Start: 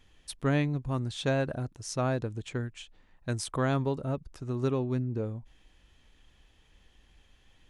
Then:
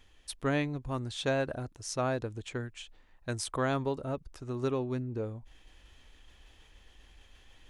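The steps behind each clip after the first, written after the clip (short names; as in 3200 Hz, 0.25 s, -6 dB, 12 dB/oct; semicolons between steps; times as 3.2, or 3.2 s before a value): bell 160 Hz -7 dB 1.3 oct; reverse; upward compressor, threshold -48 dBFS; reverse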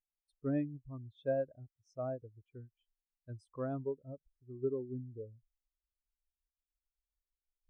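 spectral expander 2.5:1; gain -7 dB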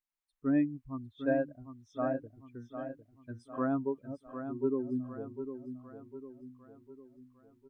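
graphic EQ 125/250/500/1000/2000 Hz -6/+9/-6/+9/+6 dB; AGC gain up to 9 dB; feedback echo 0.753 s, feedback 48%, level -9 dB; gain -5.5 dB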